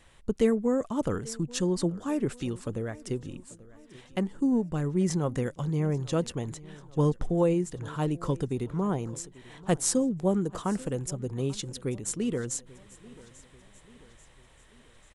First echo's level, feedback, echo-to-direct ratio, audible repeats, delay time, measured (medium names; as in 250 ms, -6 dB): -21.0 dB, 51%, -19.5 dB, 3, 839 ms